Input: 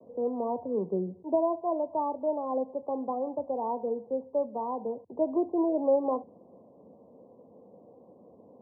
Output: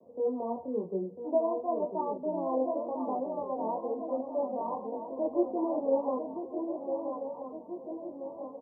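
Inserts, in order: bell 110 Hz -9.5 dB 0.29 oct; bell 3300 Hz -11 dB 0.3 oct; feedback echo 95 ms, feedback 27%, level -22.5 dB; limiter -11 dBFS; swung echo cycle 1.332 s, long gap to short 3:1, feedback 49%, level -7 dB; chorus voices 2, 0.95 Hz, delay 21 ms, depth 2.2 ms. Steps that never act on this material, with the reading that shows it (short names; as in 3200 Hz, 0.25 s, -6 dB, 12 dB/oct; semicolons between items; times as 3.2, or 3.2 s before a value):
bell 3300 Hz: input band ends at 1200 Hz; limiter -11 dBFS: input peak -16.0 dBFS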